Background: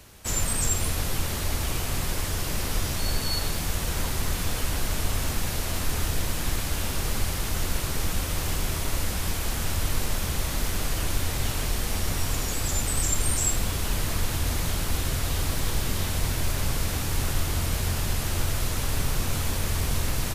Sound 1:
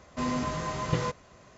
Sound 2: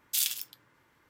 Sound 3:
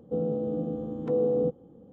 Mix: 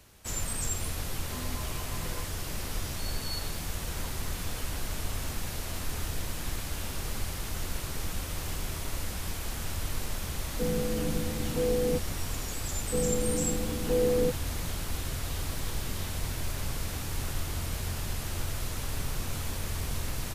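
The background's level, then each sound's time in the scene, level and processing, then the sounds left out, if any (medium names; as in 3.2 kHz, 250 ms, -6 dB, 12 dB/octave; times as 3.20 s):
background -7 dB
1.12 s: add 1 -13.5 dB
10.48 s: add 3 -4 dB + bass shelf 120 Hz +11.5 dB
12.81 s: add 3 -1 dB
not used: 2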